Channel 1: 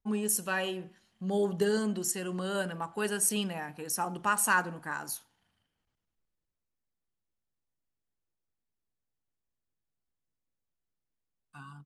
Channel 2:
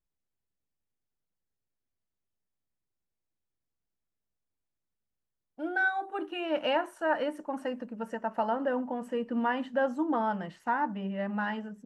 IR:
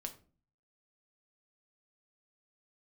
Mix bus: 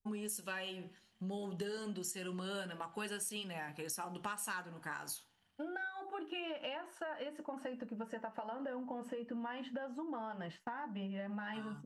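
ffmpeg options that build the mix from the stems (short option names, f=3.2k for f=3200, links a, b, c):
-filter_complex "[0:a]aeval=exprs='0.211*(cos(1*acos(clip(val(0)/0.211,-1,1)))-cos(1*PI/2))+0.0211*(cos(5*acos(clip(val(0)/0.211,-1,1)))-cos(5*PI/2))+0.0119*(cos(7*acos(clip(val(0)/0.211,-1,1)))-cos(7*PI/2))':c=same,volume=0.5dB[a];[1:a]agate=range=-33dB:threshold=-44dB:ratio=3:detection=peak,acompressor=threshold=-34dB:ratio=6,volume=2.5dB[b];[a][b]amix=inputs=2:normalize=0,adynamicequalizer=threshold=0.00447:dfrequency=3200:dqfactor=0.95:tfrequency=3200:tqfactor=0.95:attack=5:release=100:ratio=0.375:range=3:mode=boostabove:tftype=bell,flanger=delay=7.3:depth=4.5:regen=-65:speed=0.29:shape=triangular,acompressor=threshold=-39dB:ratio=6"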